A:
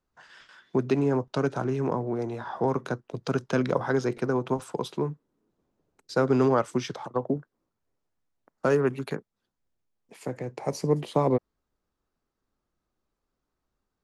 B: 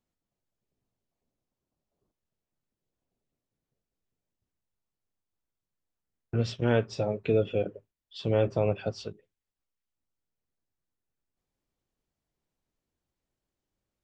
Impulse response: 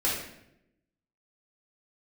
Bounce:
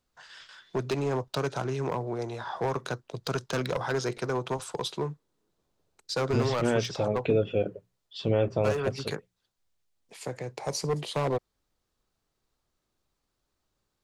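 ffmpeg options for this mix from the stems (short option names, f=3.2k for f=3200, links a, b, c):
-filter_complex "[0:a]equalizer=f=250:t=o:w=1:g=-8,equalizer=f=4k:t=o:w=1:g=7,equalizer=f=8k:t=o:w=1:g=5,asoftclip=type=hard:threshold=-23dB,volume=0dB[a];[1:a]bandreject=f=60:t=h:w=6,bandreject=f=120:t=h:w=6,bandreject=f=180:t=h:w=6,volume=2.5dB[b];[a][b]amix=inputs=2:normalize=0,alimiter=limit=-14dB:level=0:latency=1:release=408"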